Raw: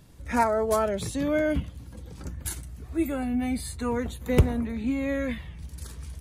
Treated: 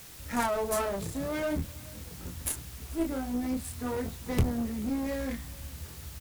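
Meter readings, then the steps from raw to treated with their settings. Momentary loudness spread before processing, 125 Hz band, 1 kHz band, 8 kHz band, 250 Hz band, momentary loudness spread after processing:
17 LU, −5.5 dB, −5.5 dB, +0.5 dB, −4.5 dB, 13 LU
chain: adaptive Wiener filter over 15 samples
high-shelf EQ 4,300 Hz +11.5 dB
chorus effect 0.48 Hz, depth 7.9 ms
in parallel at −10 dB: bit-depth reduction 6 bits, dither triangular
on the sum: asymmetric clip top −29 dBFS
on a send: single-tap delay 435 ms −23.5 dB
on the sum: level −2.5 dB

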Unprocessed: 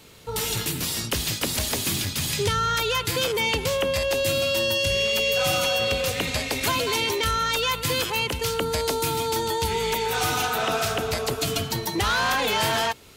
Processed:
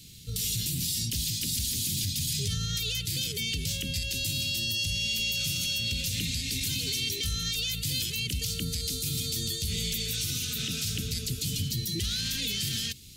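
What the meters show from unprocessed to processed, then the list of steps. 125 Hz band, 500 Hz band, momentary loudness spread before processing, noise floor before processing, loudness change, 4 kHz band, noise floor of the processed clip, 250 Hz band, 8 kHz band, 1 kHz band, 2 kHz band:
−1.0 dB, −22.0 dB, 4 LU, −34 dBFS, −5.5 dB, −3.0 dB, −36 dBFS, −5.5 dB, −1.5 dB, −32.0 dB, −11.0 dB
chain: Chebyshev band-stop filter 170–4,100 Hz, order 2
brickwall limiter −24.5 dBFS, peak gain reduction 10 dB
level +3.5 dB

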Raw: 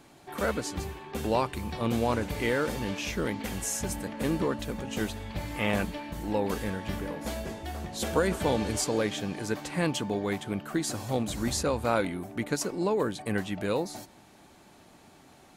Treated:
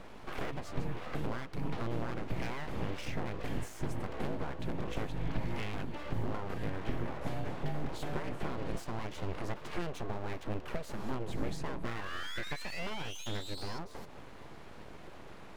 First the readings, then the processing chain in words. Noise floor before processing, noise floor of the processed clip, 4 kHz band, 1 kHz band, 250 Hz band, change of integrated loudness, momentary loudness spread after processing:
−56 dBFS, −48 dBFS, −8.0 dB, −8.0 dB, −9.5 dB, −9.0 dB, 6 LU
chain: parametric band 150 Hz −7 dB 1 octave
sound drawn into the spectrogram rise, 0:11.87–0:13.79, 1,200–4,900 Hz −31 dBFS
downward compressor 5 to 1, threshold −43 dBFS, peak gain reduction 20 dB
bass and treble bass +11 dB, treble −15 dB
full-wave rectification
level +6 dB

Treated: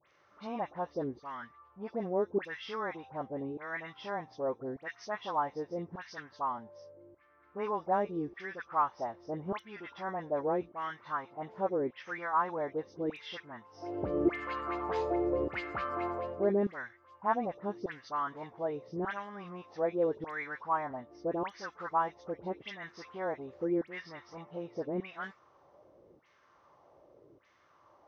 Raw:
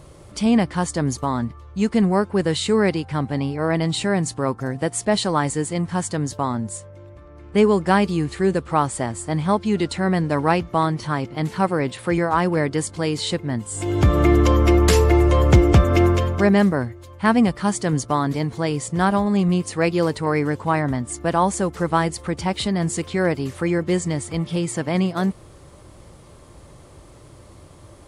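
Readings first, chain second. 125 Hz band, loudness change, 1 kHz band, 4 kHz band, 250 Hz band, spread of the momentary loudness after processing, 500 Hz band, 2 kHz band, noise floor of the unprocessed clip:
−27.0 dB, −15.5 dB, −11.0 dB, −21.0 dB, −18.5 dB, 13 LU, −12.5 dB, −13.5 dB, −46 dBFS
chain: hearing-aid frequency compression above 2,300 Hz 1.5 to 1
auto-filter band-pass saw down 0.84 Hz 350–2,200 Hz
all-pass dispersion highs, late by 74 ms, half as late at 1,900 Hz
level −6 dB

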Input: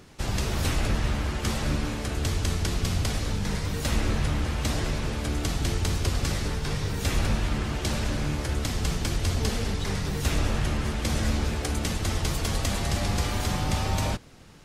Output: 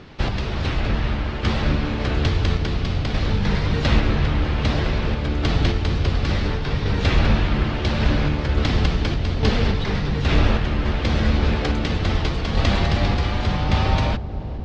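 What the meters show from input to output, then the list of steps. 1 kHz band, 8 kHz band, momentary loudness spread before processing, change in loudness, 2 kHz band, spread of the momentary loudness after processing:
+6.5 dB, −10.0 dB, 3 LU, +6.0 dB, +6.5 dB, 4 LU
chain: low-pass filter 4,300 Hz 24 dB per octave
sample-and-hold tremolo
on a send: delay with a low-pass on its return 444 ms, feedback 80%, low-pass 640 Hz, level −12.5 dB
on the sum: level +9 dB

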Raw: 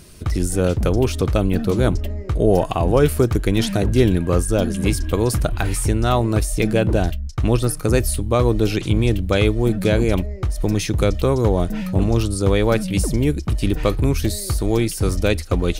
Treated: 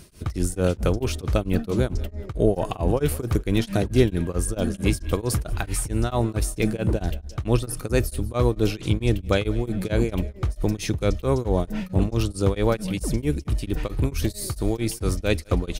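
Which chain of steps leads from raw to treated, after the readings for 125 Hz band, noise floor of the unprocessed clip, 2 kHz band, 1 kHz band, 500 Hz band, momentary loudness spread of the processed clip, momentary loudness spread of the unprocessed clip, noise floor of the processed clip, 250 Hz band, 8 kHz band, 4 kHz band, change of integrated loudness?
−5.0 dB, −29 dBFS, −5.5 dB, −6.5 dB, −5.5 dB, 5 LU, 5 LU, −42 dBFS, −5.0 dB, −5.0 dB, −5.5 dB, −5.5 dB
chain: on a send: repeating echo 185 ms, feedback 45%, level −22 dB
on the sum: tremolo along a rectified sine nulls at 4.5 Hz
level −2 dB

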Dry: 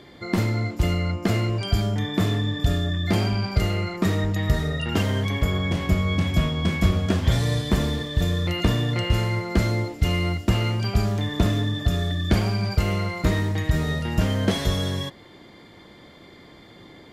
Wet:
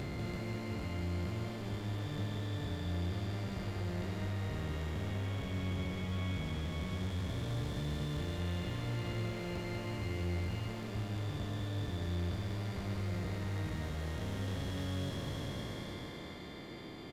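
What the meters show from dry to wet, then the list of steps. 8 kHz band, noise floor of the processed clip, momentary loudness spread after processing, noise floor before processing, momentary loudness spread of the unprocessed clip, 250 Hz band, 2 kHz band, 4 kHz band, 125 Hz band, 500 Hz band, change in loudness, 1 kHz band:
−15.0 dB, −46 dBFS, 3 LU, −48 dBFS, 3 LU, −14.5 dB, −15.0 dB, −16.0 dB, −14.0 dB, −14.0 dB, −15.0 dB, −14.0 dB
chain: spectrum smeared in time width 1,320 ms
downward compressor 3 to 1, threshold −38 dBFS, peak gain reduction 13 dB
gain into a clipping stage and back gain 36 dB
on a send: single-tap delay 194 ms −4.5 dB

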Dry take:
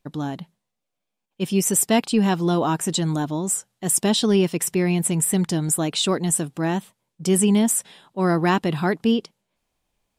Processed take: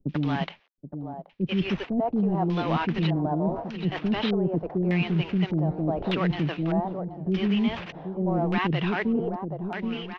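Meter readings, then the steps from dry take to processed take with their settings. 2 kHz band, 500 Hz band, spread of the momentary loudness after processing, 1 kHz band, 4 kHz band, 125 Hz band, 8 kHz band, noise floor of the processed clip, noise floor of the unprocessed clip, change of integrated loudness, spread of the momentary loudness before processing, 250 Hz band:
−2.0 dB, −5.0 dB, 8 LU, −3.0 dB, −7.5 dB, −1.5 dB, below −40 dB, −53 dBFS, −81 dBFS, −5.5 dB, 7 LU, −3.5 dB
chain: variable-slope delta modulation 32 kbit/s
on a send: repeating echo 777 ms, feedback 38%, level −18.5 dB
on the sum: auto-filter low-pass square 0.83 Hz 680–2,700 Hz
reversed playback
downward compressor 5 to 1, threshold −28 dBFS, peak gain reduction 15.5 dB
reversed playback
low-shelf EQ 91 Hz +5.5 dB
multiband delay without the direct sound lows, highs 90 ms, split 420 Hz
multiband upward and downward compressor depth 40%
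level +5.5 dB

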